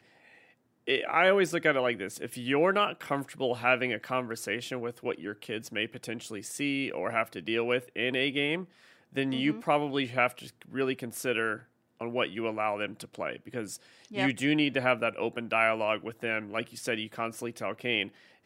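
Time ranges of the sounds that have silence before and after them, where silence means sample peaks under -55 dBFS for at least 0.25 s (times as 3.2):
0.87–11.65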